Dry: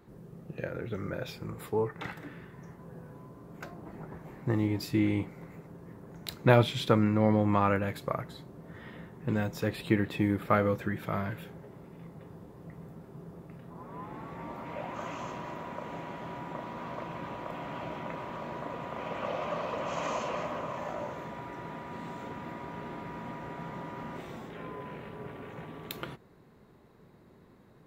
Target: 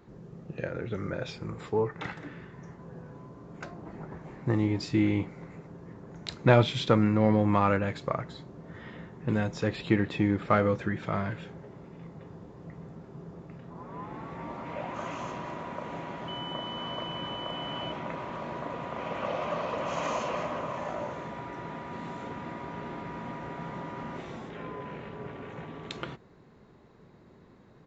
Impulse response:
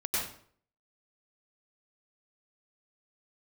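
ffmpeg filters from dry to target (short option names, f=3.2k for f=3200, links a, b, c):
-filter_complex "[0:a]asettb=1/sr,asplit=3[a][b][c];[a]atrim=end=16.284[d];[b]atrim=start=16.28:end=17.92,asetpts=PTS-STARTPTS,afade=t=in:d=0.004:c=qsin,afade=t=out:st=1.636:d=0.004:c=qsin,aeval=exprs='val(0)+0.00891*sin(2*PI*3000*n/s)':c=same[e];[c]atrim=start=17.916[f];[d][e]acrossfade=d=0.004:c1=hsin:c2=qsin[g];[g][f]acrossfade=d=0.004:c1=qsin:c2=hsin,asplit=2[h][i];[i]volume=20dB,asoftclip=hard,volume=-20dB,volume=-11.5dB[j];[h][j]amix=inputs=2:normalize=0,aresample=16000,aresample=44100"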